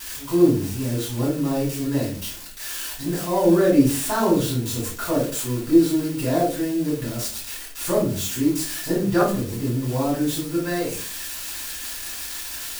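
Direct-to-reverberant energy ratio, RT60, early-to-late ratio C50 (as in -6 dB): -7.5 dB, 0.40 s, 5.0 dB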